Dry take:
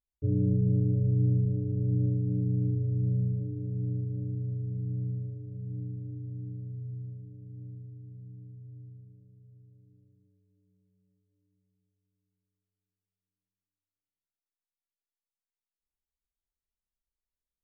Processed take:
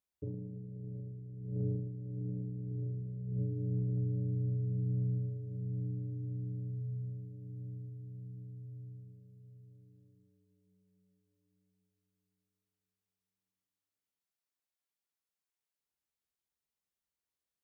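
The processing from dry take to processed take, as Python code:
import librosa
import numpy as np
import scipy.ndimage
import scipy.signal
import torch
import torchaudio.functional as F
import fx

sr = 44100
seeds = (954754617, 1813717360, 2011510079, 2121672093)

y = scipy.signal.sosfilt(scipy.signal.butter(2, 100.0, 'highpass', fs=sr, output='sos'), x)
y = fx.hum_notches(y, sr, base_hz=50, count=6)
y = fx.over_compress(y, sr, threshold_db=-33.0, ratio=-0.5)
y = y * librosa.db_to_amplitude(-2.0)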